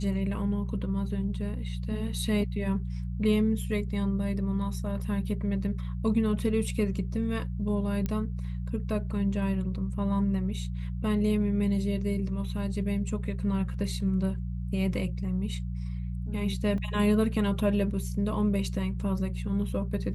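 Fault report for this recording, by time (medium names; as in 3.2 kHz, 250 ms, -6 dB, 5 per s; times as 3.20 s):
hum 60 Hz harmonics 3 -33 dBFS
8.06 s: pop -18 dBFS
16.78 s: dropout 2.3 ms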